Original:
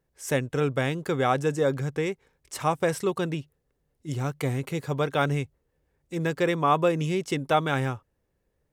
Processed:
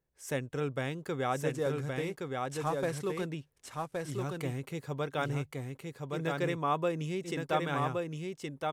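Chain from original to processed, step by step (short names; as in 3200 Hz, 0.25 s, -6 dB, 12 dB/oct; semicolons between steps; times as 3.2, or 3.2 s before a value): 1.49–3.26 CVSD 64 kbps; echo 1.119 s -3.5 dB; gain -8.5 dB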